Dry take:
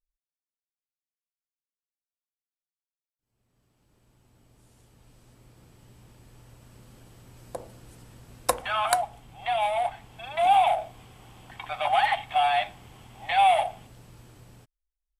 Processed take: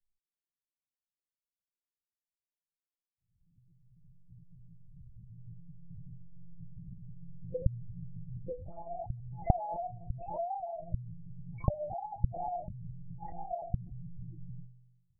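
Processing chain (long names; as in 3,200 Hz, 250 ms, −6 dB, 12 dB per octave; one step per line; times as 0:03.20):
high-pass filter 51 Hz 6 dB per octave
notch filter 750 Hz, Q 12
flanger 0.58 Hz, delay 3.2 ms, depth 8.9 ms, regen −81%
spectral tilt −2 dB per octave
downward compressor 5 to 1, threshold −30 dBFS, peak gain reduction 8.5 dB
tuned comb filter 120 Hz, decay 1.2 s, harmonics all, mix 40%
treble cut that deepens with the level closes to 420 Hz, closed at −38.5 dBFS
spectral peaks only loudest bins 4
one-pitch LPC vocoder at 8 kHz 170 Hz
level +11 dB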